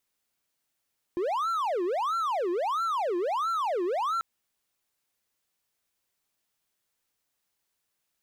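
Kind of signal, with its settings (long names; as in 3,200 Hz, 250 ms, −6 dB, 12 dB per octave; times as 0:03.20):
siren wail 345–1,360 Hz 1.5 per second triangle −23.5 dBFS 3.04 s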